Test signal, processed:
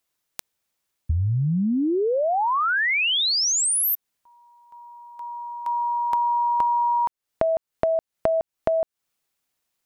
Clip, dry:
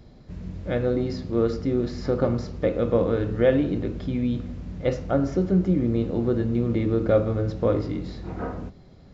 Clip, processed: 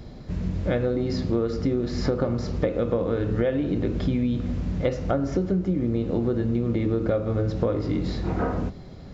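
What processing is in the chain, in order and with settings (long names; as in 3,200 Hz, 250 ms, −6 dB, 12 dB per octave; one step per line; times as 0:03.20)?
downward compressor 16 to 1, threshold −28 dBFS
level +8 dB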